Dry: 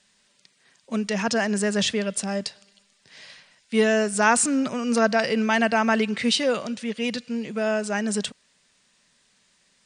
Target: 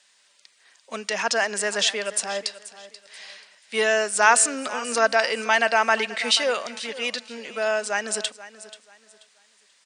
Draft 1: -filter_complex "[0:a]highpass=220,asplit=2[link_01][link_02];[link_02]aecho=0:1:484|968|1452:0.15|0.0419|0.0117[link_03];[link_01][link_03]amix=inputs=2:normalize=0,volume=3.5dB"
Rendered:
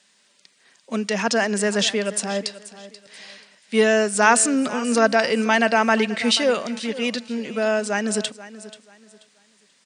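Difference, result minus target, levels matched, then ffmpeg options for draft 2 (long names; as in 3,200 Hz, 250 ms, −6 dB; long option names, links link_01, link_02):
250 Hz band +12.0 dB
-filter_complex "[0:a]highpass=610,asplit=2[link_01][link_02];[link_02]aecho=0:1:484|968|1452:0.15|0.0419|0.0117[link_03];[link_01][link_03]amix=inputs=2:normalize=0,volume=3.5dB"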